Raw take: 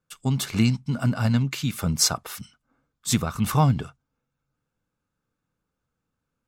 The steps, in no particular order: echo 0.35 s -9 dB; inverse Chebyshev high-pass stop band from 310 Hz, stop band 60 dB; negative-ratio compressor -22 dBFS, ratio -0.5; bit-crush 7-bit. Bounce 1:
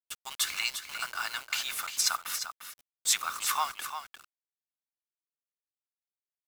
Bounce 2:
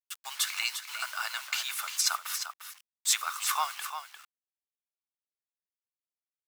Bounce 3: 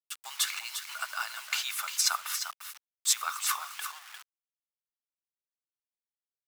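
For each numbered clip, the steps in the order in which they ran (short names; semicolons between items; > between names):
inverse Chebyshev high-pass > negative-ratio compressor > bit-crush > echo; bit-crush > inverse Chebyshev high-pass > negative-ratio compressor > echo; negative-ratio compressor > echo > bit-crush > inverse Chebyshev high-pass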